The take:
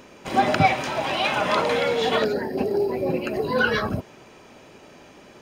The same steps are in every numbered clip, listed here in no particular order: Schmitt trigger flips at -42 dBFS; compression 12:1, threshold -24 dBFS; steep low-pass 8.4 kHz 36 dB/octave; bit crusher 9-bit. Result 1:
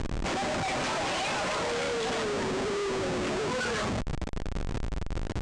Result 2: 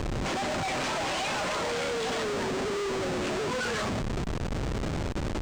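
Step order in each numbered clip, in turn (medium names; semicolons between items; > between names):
compression > bit crusher > Schmitt trigger > steep low-pass; compression > Schmitt trigger > steep low-pass > bit crusher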